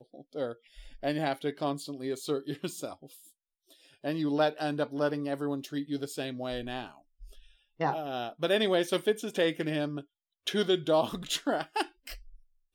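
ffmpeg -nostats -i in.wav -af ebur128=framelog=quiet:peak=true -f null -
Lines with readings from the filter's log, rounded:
Integrated loudness:
  I:         -31.7 LUFS
  Threshold: -42.6 LUFS
Loudness range:
  LRA:         6.1 LU
  Threshold: -52.4 LUFS
  LRA low:   -35.7 LUFS
  LRA high:  -29.6 LUFS
True peak:
  Peak:      -14.4 dBFS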